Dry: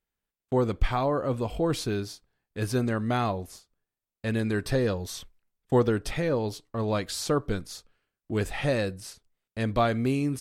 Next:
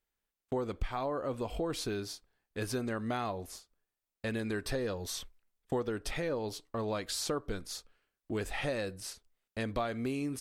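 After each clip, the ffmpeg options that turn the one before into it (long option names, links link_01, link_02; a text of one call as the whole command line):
ffmpeg -i in.wav -af "equalizer=frequency=130:width_type=o:width=1.5:gain=-7,acompressor=threshold=-33dB:ratio=3" out.wav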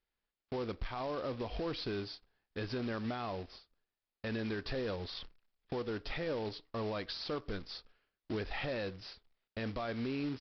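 ffmpeg -i in.wav -af "alimiter=level_in=4.5dB:limit=-24dB:level=0:latency=1:release=17,volume=-4.5dB,aresample=11025,acrusher=bits=3:mode=log:mix=0:aa=0.000001,aresample=44100,volume=-1dB" out.wav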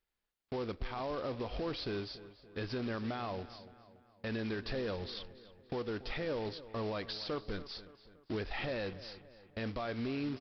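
ffmpeg -i in.wav -filter_complex "[0:a]asplit=2[link_01][link_02];[link_02]adelay=285,lowpass=frequency=3700:poles=1,volume=-15.5dB,asplit=2[link_03][link_04];[link_04]adelay=285,lowpass=frequency=3700:poles=1,volume=0.49,asplit=2[link_05][link_06];[link_06]adelay=285,lowpass=frequency=3700:poles=1,volume=0.49,asplit=2[link_07][link_08];[link_08]adelay=285,lowpass=frequency=3700:poles=1,volume=0.49[link_09];[link_01][link_03][link_05][link_07][link_09]amix=inputs=5:normalize=0" out.wav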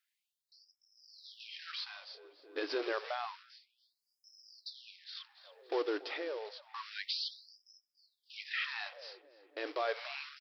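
ffmpeg -i in.wav -af "tremolo=f=0.7:d=0.64,afftfilt=real='re*gte(b*sr/1024,260*pow(5100/260,0.5+0.5*sin(2*PI*0.29*pts/sr)))':imag='im*gte(b*sr/1024,260*pow(5100/260,0.5+0.5*sin(2*PI*0.29*pts/sr)))':win_size=1024:overlap=0.75,volume=5.5dB" out.wav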